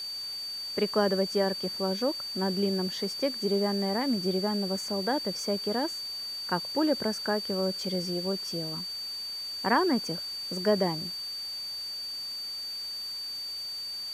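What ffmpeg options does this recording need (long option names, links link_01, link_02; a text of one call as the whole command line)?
ffmpeg -i in.wav -af "adeclick=threshold=4,bandreject=frequency=4600:width=30,afftdn=noise_reduction=30:noise_floor=-37" out.wav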